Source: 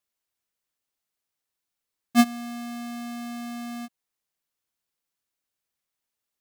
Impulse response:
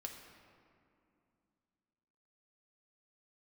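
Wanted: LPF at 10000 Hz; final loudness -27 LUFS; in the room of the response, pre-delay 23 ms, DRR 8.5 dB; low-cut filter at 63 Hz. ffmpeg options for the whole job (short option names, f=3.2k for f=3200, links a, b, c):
-filter_complex "[0:a]highpass=63,lowpass=10k,asplit=2[a][b];[1:a]atrim=start_sample=2205,adelay=23[c];[b][c]afir=irnorm=-1:irlink=0,volume=-5.5dB[d];[a][d]amix=inputs=2:normalize=0,volume=2dB"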